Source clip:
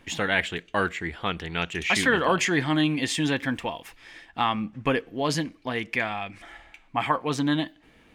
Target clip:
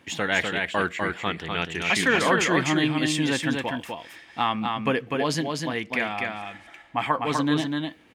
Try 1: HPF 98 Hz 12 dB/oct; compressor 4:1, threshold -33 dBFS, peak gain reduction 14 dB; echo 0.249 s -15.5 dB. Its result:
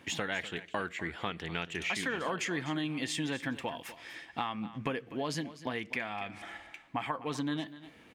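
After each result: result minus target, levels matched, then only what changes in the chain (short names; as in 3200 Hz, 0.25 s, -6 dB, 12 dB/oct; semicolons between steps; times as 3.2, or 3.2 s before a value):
compressor: peak gain reduction +14 dB; echo-to-direct -11.5 dB
remove: compressor 4:1, threshold -33 dBFS, peak gain reduction 14 dB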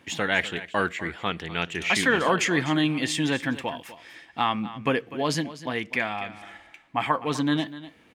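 echo-to-direct -11.5 dB
change: echo 0.249 s -4 dB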